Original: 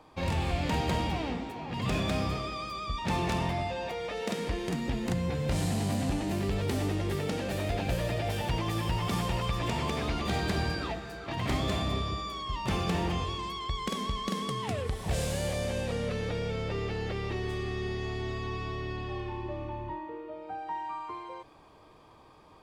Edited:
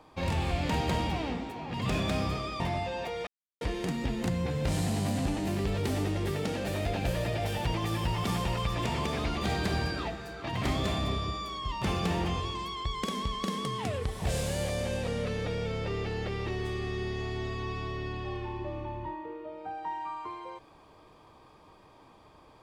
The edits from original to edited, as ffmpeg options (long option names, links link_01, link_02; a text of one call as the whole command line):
ffmpeg -i in.wav -filter_complex "[0:a]asplit=4[link_01][link_02][link_03][link_04];[link_01]atrim=end=2.602[link_05];[link_02]atrim=start=3.438:end=4.11,asetpts=PTS-STARTPTS,afade=type=out:start_time=0.668:duration=0.004:curve=hsin[link_06];[link_03]atrim=start=4.11:end=4.45,asetpts=PTS-STARTPTS,volume=0[link_07];[link_04]atrim=start=4.45,asetpts=PTS-STARTPTS,afade=type=in:duration=0.004:curve=hsin[link_08];[link_06][link_07][link_08]concat=n=3:v=0:a=1[link_09];[link_05][link_09]acrossfade=duration=0.004:curve1=hsin:curve2=hsin" out.wav